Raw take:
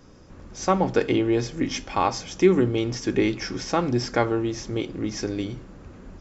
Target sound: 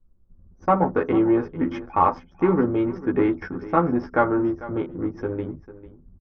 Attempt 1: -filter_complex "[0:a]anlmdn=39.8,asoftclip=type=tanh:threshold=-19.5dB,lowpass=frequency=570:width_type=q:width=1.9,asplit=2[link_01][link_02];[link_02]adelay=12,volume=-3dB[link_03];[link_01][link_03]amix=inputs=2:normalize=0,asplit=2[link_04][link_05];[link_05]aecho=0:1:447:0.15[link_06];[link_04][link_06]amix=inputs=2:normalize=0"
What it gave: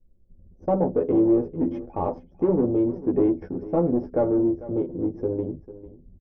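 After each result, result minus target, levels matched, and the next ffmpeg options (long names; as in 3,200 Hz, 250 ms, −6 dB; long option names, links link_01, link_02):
1,000 Hz band −9.0 dB; soft clipping: distortion +8 dB
-filter_complex "[0:a]anlmdn=39.8,asoftclip=type=tanh:threshold=-19.5dB,lowpass=frequency=1300:width_type=q:width=1.9,asplit=2[link_01][link_02];[link_02]adelay=12,volume=-3dB[link_03];[link_01][link_03]amix=inputs=2:normalize=0,asplit=2[link_04][link_05];[link_05]aecho=0:1:447:0.15[link_06];[link_04][link_06]amix=inputs=2:normalize=0"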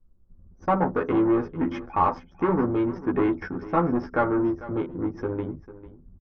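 soft clipping: distortion +8 dB
-filter_complex "[0:a]anlmdn=39.8,asoftclip=type=tanh:threshold=-11.5dB,lowpass=frequency=1300:width_type=q:width=1.9,asplit=2[link_01][link_02];[link_02]adelay=12,volume=-3dB[link_03];[link_01][link_03]amix=inputs=2:normalize=0,asplit=2[link_04][link_05];[link_05]aecho=0:1:447:0.15[link_06];[link_04][link_06]amix=inputs=2:normalize=0"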